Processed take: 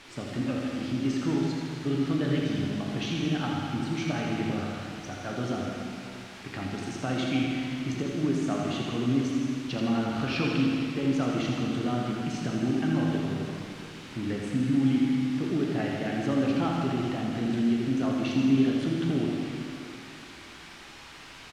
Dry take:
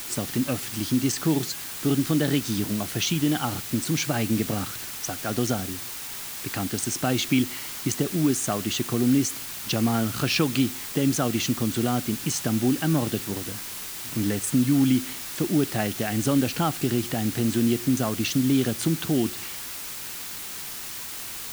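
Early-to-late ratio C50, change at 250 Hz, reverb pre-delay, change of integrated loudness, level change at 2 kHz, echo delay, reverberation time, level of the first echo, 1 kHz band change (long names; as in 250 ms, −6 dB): −1.0 dB, −2.0 dB, 5 ms, −3.5 dB, −3.5 dB, 82 ms, 2.6 s, −6.5 dB, −3.0 dB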